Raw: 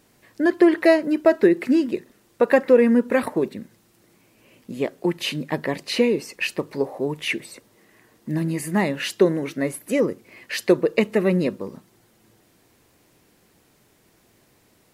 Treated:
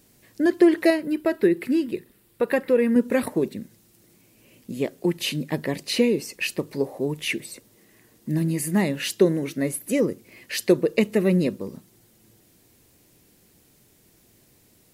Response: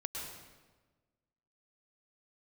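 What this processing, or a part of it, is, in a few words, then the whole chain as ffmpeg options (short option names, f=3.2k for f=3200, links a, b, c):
smiley-face EQ: -filter_complex "[0:a]lowshelf=f=180:g=3,equalizer=f=1.1k:t=o:w=1.9:g=-6.5,highshelf=f=7.9k:g=7,asettb=1/sr,asplit=3[a][b][c];[a]atrim=end=0.904[d];[b]atrim=start=0.9:end=2.96,asetpts=PTS-STARTPTS,afade=t=in:d=0.004:c=qsin,afade=t=out:st=2.056:d=0.004:c=qsin,equalizer=f=250:t=o:w=0.67:g=-5,equalizer=f=630:t=o:w=0.67:g=-5,equalizer=f=6.3k:t=o:w=0.67:g=-10[e];[c]atrim=start=2.956[f];[d][e]acrossfade=d=0.004:c1=hsin:c2=qsin[g];[g][f]acrossfade=d=0.004:c1=qsin:c2=hsin"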